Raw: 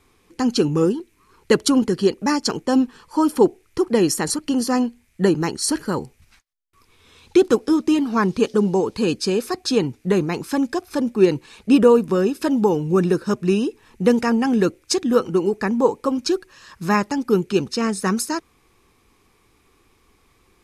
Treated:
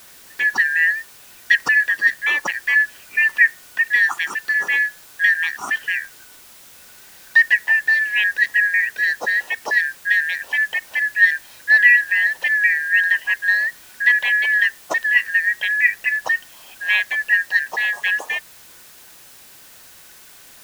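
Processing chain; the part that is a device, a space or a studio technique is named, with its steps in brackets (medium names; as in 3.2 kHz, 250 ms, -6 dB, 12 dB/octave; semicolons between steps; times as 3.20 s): split-band scrambled radio (four frequency bands reordered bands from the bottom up 4123; band-pass 340–3200 Hz; white noise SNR 25 dB); trim +1 dB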